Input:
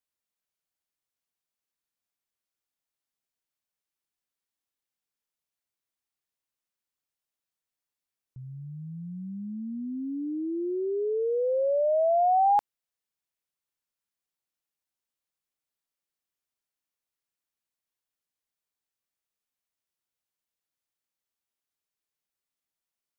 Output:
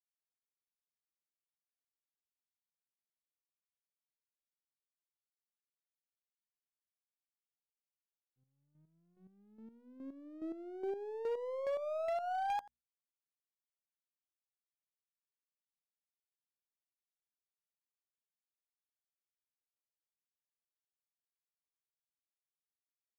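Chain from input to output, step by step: half-wave gain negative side -7 dB; expander -30 dBFS; low shelf 230 Hz -8.5 dB; notches 60/120/180/240 Hz; on a send: echo 86 ms -17 dB; on the sum: chopper 2.4 Hz, depth 65%, duty 25%; low shelf 95 Hz -11 dB; compressor 12:1, threshold -31 dBFS, peak gain reduction 9 dB; hard clip -31 dBFS, distortion -18 dB; gain -1 dB

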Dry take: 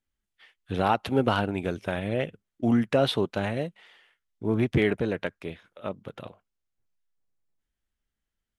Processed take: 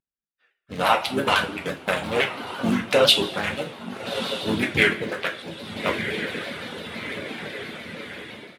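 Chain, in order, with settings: Wiener smoothing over 41 samples; high shelf 8600 Hz +10.5 dB; on a send: diffused feedback echo 1.325 s, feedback 54%, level -11 dB; on the sum: harmoniser -4 st -4 dB, -3 st -17 dB, +5 st -17 dB; reverb removal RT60 1.2 s; AGC gain up to 16 dB; HPF 170 Hz 6 dB/oct; tilt shelf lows -7.5 dB; two-slope reverb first 0.3 s, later 2.1 s, from -18 dB, DRR 1.5 dB; shaped vibrato saw down 5.9 Hz, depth 100 cents; gain -3.5 dB

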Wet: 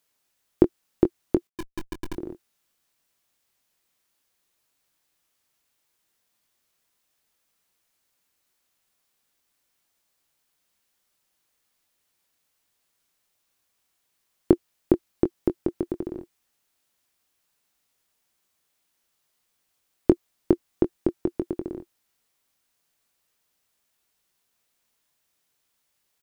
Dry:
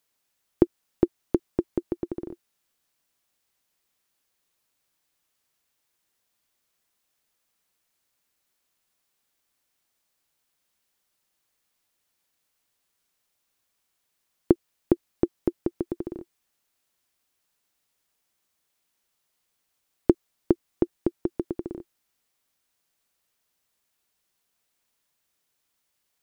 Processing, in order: 1.47–2.14 Schmitt trigger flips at -29.5 dBFS; doubler 22 ms -9 dB; gain +1.5 dB

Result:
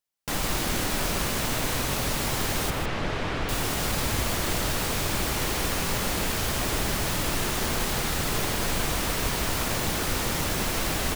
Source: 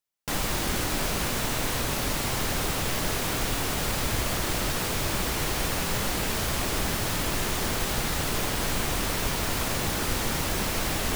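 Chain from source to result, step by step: 2.7–3.49 LPF 3000 Hz 12 dB/oct; on a send: echo 0.155 s -7.5 dB

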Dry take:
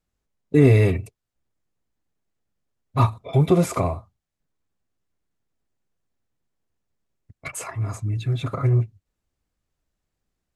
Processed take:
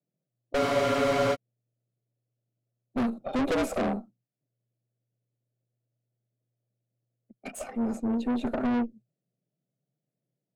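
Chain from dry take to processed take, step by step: gate -44 dBFS, range -7 dB; resonant low shelf 670 Hz +9 dB, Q 3; frequency shift +120 Hz; tube stage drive 18 dB, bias 0.65; spectral freeze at 0.61, 0.73 s; gain -6 dB

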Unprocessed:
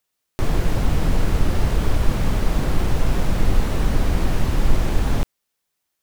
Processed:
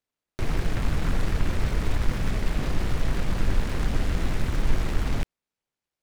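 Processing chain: air absorption 150 m; noise-modulated delay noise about 1300 Hz, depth 0.2 ms; gain -5.5 dB

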